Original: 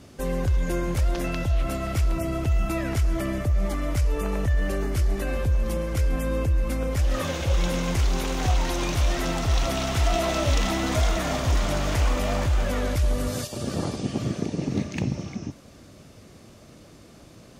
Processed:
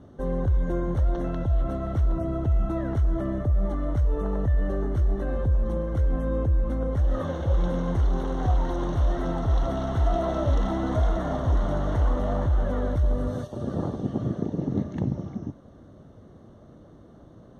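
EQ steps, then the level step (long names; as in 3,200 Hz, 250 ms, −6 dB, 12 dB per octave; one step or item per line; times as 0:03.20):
moving average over 18 samples
0.0 dB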